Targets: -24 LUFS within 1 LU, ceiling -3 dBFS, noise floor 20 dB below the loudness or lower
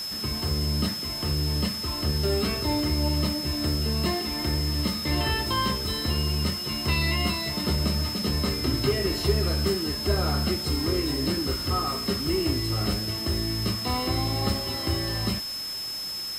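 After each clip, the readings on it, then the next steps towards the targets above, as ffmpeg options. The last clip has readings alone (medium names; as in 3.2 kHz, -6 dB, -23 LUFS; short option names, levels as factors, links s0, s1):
steady tone 5.2 kHz; tone level -31 dBFS; noise floor -33 dBFS; noise floor target -46 dBFS; loudness -26.0 LUFS; peak level -10.5 dBFS; loudness target -24.0 LUFS
-> -af "bandreject=f=5200:w=30"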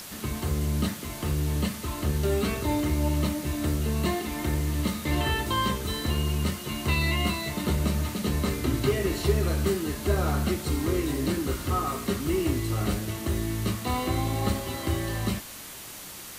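steady tone not found; noise floor -42 dBFS; noise floor target -48 dBFS
-> -af "afftdn=nr=6:nf=-42"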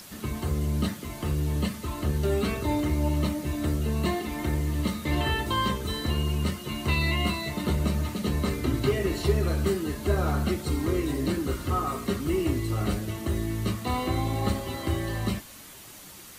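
noise floor -46 dBFS; noise floor target -48 dBFS
-> -af "afftdn=nr=6:nf=-46"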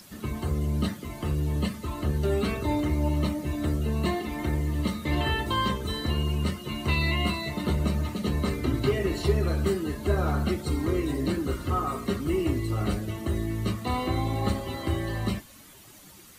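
noise floor -50 dBFS; loudness -28.0 LUFS; peak level -11.0 dBFS; loudness target -24.0 LUFS
-> -af "volume=1.58"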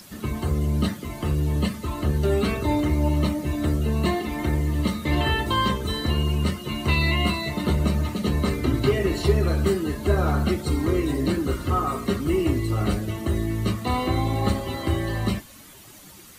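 loudness -24.5 LUFS; peak level -7.0 dBFS; noise floor -46 dBFS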